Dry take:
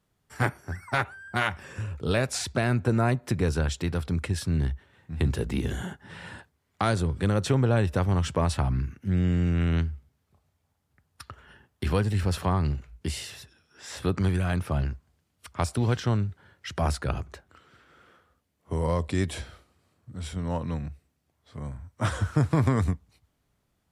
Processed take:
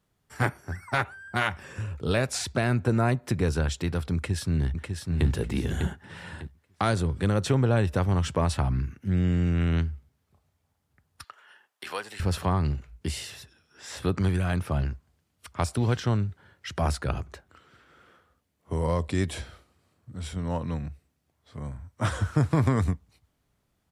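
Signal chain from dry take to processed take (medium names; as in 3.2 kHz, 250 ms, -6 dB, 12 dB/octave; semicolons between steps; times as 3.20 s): 4.14–5.27 s: echo throw 600 ms, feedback 30%, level -5 dB; 11.24–12.20 s: high-pass 760 Hz 12 dB/octave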